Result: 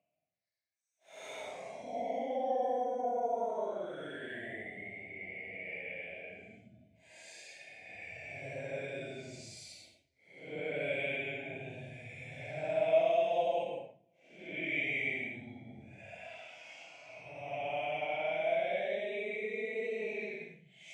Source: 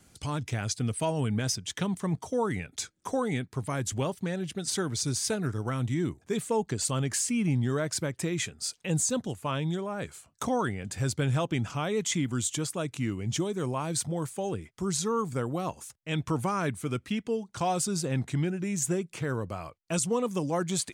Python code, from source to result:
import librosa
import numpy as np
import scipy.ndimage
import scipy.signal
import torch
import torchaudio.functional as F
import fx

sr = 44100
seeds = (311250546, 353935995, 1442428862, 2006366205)

y = fx.paulstretch(x, sr, seeds[0], factor=12.0, window_s=0.05, from_s=10.31)
y = fx.double_bandpass(y, sr, hz=1200.0, octaves=1.8)
y = y * 10.0 ** (5.0 / 20.0)